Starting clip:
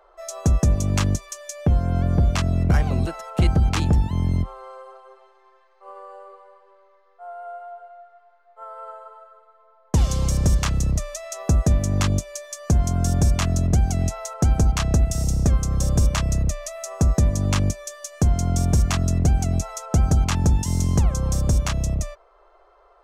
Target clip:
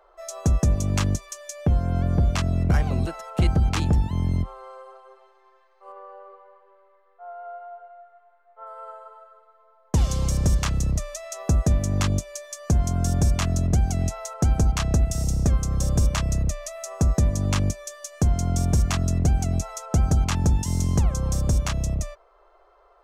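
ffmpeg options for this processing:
-filter_complex "[0:a]asettb=1/sr,asplit=3[s0][s1][s2];[s0]atrim=end=5.924[s3];[s1]atrim=start=5.92:end=8.67,asetpts=PTS-STARTPTS,afade=t=in:d=0.004:c=qsin,afade=t=out:st=2.746:d=0.004:c=qsin,lowpass=2800[s4];[s2]atrim=start=8.666[s5];[s3][s4]acrossfade=d=0.004:c1=hsin:c2=qsin[s6];[s6][s5]acrossfade=d=0.004:c1=qsin:c2=hsin,volume=0.794"

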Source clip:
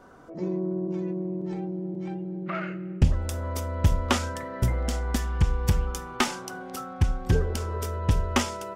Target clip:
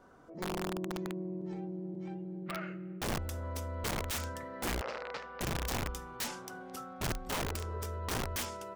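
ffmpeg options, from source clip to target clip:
-filter_complex "[0:a]aeval=exprs='(mod(11.9*val(0)+1,2)-1)/11.9':c=same,asettb=1/sr,asplit=3[s0][s1][s2];[s0]atrim=end=4.814[s3];[s1]atrim=start=4.81:end=5.41,asetpts=PTS-STARTPTS,afade=t=in:d=0.004:c=qsin,afade=t=out:st=0.596:d=0.004:c=qsin,highpass=330,equalizer=f=340:t=q:w=4:g=-9,equalizer=f=510:t=q:w=4:g=9,equalizer=f=1300:t=q:w=4:g=3,equalizer=f=3300:t=q:w=4:g=-7,lowpass=f=4200:w=0.5412,lowpass=f=4200:w=1.3066[s4];[s2]atrim=start=5.406[s5];[s3][s4]acrossfade=d=0.004:c1=hsin:c2=qsin[s6];[s6][s5]acrossfade=d=0.004:c1=qsin:c2=hsin,volume=0.398"

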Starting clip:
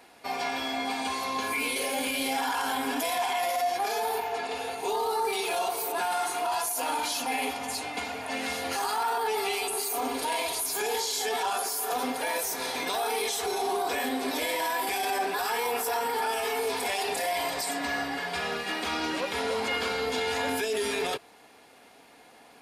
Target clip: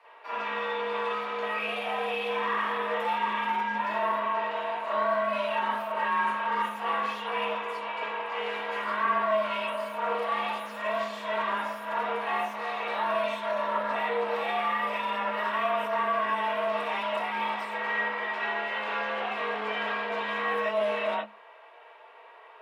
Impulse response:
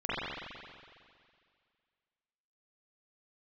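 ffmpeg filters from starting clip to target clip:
-filter_complex "[0:a]aeval=exprs='clip(val(0),-1,0.0158)':c=same[s0];[1:a]atrim=start_sample=2205,afade=t=out:st=0.13:d=0.01,atrim=end_sample=6174[s1];[s0][s1]afir=irnorm=-1:irlink=0,afreqshift=210,highpass=250,acrossover=split=320 3100:gain=0.178 1 0.0891[s2][s3][s4];[s2][s3][s4]amix=inputs=3:normalize=0,volume=0.841"

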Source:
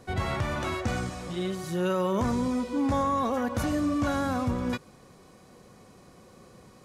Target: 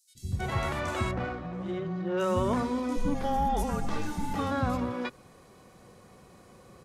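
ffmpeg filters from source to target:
-filter_complex "[0:a]asplit=3[s0][s1][s2];[s0]afade=t=out:st=2.81:d=0.02[s3];[s1]afreqshift=-290,afade=t=in:st=2.81:d=0.02,afade=t=out:st=4.18:d=0.02[s4];[s2]afade=t=in:st=4.18:d=0.02[s5];[s3][s4][s5]amix=inputs=3:normalize=0,acrossover=split=240|5300[s6][s7][s8];[s6]adelay=150[s9];[s7]adelay=320[s10];[s9][s10][s8]amix=inputs=3:normalize=0,asettb=1/sr,asplit=3[s11][s12][s13];[s11]atrim=end=1.114[s14];[s12]atrim=start=1.11:end=2.2,asetpts=PTS-STARTPTS,afade=t=in:d=0.004:c=qsin,afade=t=out:st=1.086:d=0.004:c=qsin,adynamicsmooth=sensitivity=2:basefreq=1600[s15];[s13]atrim=start=2.196[s16];[s14][s15]acrossfade=d=0.004:c1=hsin:c2=qsin[s17];[s17][s16]acrossfade=d=0.004:c1=qsin:c2=hsin"

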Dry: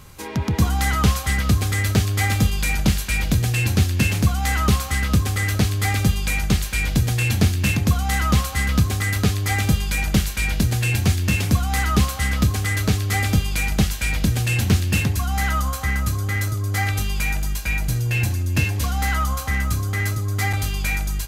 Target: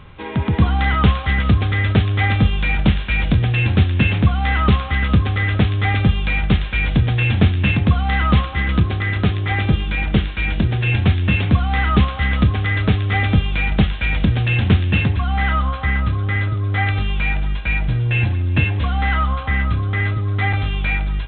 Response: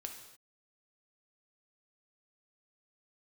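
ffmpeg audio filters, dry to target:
-filter_complex "[0:a]asettb=1/sr,asplit=3[s0][s1][s2];[s0]atrim=end=8.454[s3];[s1]atrim=start=8.45:end=10.87,asetpts=PTS-STARTPTS,afade=t=in:d=0.004:c=qsin,afade=t=out:st=2.416:d=0.004:c=qsin,tremolo=f=260:d=0.333[s4];[s2]atrim=start=10.866[s5];[s3][s4]acrossfade=d=0.004:c1=hsin:c2=qsin[s6];[s6][s5]acrossfade=d=0.004:c1=qsin:c2=hsin,volume=1.5" -ar 8000 -c:a pcm_mulaw

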